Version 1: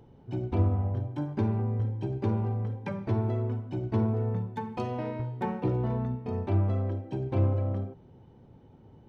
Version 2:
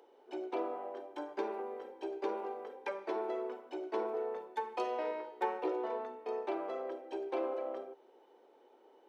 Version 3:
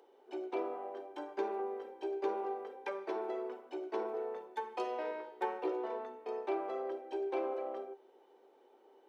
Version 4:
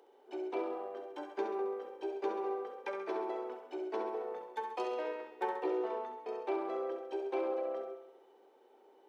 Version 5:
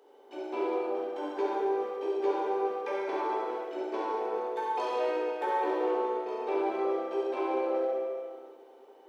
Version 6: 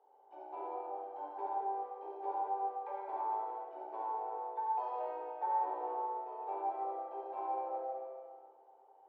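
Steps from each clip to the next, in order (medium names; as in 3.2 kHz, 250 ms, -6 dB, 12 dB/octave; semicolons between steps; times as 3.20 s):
steep high-pass 370 Hz 36 dB/octave
feedback comb 390 Hz, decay 0.15 s, harmonics all, mix 60%; trim +5 dB
thinning echo 67 ms, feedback 58%, high-pass 150 Hz, level -7.5 dB
plate-style reverb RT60 1.9 s, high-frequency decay 1×, DRR -6 dB
band-pass filter 810 Hz, Q 4.9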